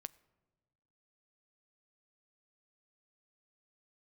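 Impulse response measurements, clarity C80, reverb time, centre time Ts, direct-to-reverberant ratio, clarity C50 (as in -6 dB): 23.0 dB, 1.3 s, 2 ms, 15.5 dB, 22.0 dB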